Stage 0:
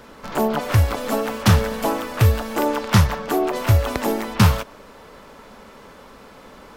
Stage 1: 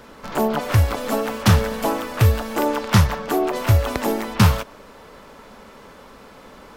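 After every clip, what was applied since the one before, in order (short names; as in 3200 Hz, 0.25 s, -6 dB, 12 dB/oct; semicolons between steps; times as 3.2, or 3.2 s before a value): nothing audible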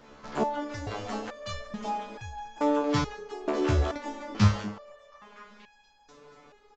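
downsampling 16000 Hz; delay with a stepping band-pass 0.24 s, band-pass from 350 Hz, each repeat 0.7 oct, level -2.5 dB; stepped resonator 2.3 Hz 73–830 Hz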